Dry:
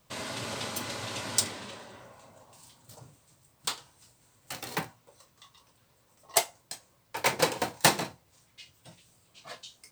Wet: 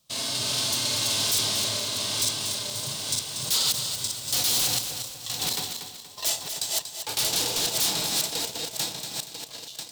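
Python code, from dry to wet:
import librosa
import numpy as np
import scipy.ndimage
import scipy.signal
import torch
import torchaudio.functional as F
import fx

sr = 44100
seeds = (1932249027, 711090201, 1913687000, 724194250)

y = fx.reverse_delay_fb(x, sr, ms=473, feedback_pct=60, wet_db=-5.0)
y = fx.doppler_pass(y, sr, speed_mps=17, closest_m=14.0, pass_at_s=4.19)
y = fx.hpss(y, sr, part='percussive', gain_db=-10)
y = fx.leveller(y, sr, passes=2)
y = fx.fold_sine(y, sr, drive_db=14, ceiling_db=-24.0)
y = fx.high_shelf_res(y, sr, hz=2700.0, db=10.5, q=1.5)
y = fx.echo_feedback(y, sr, ms=237, feedback_pct=39, wet_db=-8.5)
y = y * 10.0 ** (-5.5 / 20.0)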